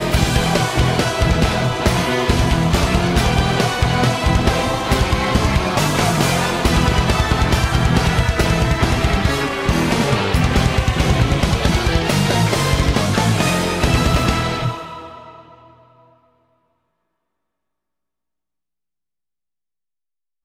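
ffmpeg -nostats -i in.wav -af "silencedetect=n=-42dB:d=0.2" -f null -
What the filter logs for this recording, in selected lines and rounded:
silence_start: 16.13
silence_end: 20.45 | silence_duration: 4.32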